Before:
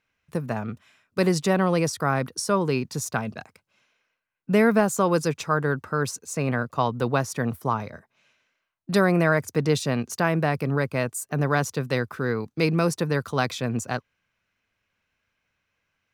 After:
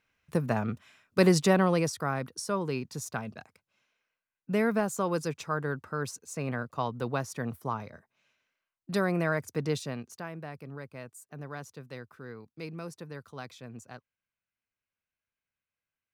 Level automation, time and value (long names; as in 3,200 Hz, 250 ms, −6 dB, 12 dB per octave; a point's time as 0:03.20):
0:01.41 0 dB
0:02.15 −8 dB
0:09.72 −8 dB
0:10.30 −18 dB